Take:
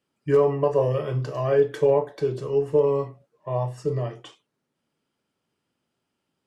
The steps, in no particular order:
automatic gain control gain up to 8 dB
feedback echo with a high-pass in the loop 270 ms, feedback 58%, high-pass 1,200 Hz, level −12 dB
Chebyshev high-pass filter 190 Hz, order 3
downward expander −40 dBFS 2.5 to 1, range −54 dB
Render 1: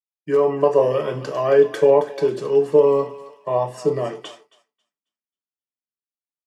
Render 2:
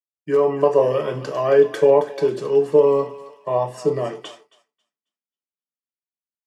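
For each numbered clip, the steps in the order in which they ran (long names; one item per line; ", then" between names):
automatic gain control, then feedback echo with a high-pass in the loop, then downward expander, then Chebyshev high-pass filter
feedback echo with a high-pass in the loop, then automatic gain control, then downward expander, then Chebyshev high-pass filter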